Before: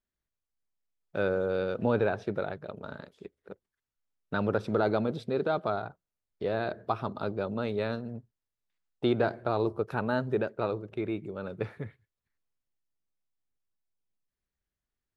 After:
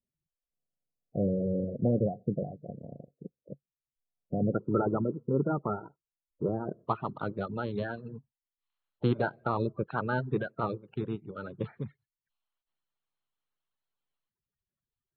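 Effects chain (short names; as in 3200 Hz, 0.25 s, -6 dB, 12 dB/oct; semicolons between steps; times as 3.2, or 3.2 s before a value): bin magnitudes rounded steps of 30 dB; reverb removal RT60 0.69 s; dynamic EQ 180 Hz, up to +5 dB, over -47 dBFS, Q 0.76; rippled Chebyshev low-pass 740 Hz, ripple 6 dB, from 4.54 s 1400 Hz, from 6.86 s 4300 Hz; bell 140 Hz +8 dB 0.39 oct; gain +1.5 dB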